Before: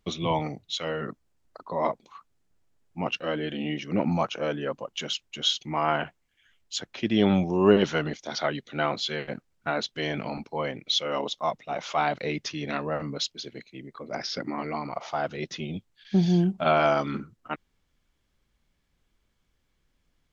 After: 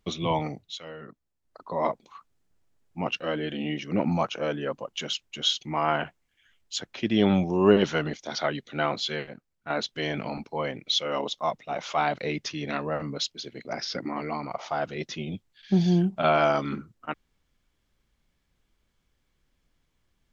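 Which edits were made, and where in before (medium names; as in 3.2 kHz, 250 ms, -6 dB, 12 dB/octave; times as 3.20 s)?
0.53–1.70 s: dip -10.5 dB, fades 0.29 s
9.28–9.70 s: gain -8.5 dB
13.65–14.07 s: delete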